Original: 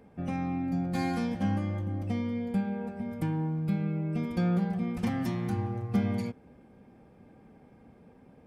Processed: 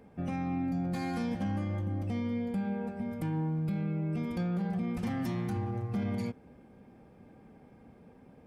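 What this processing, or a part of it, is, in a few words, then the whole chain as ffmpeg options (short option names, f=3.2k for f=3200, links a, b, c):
soft clipper into limiter: -af "asoftclip=type=tanh:threshold=-18dB,alimiter=level_in=2dB:limit=-24dB:level=0:latency=1:release=33,volume=-2dB"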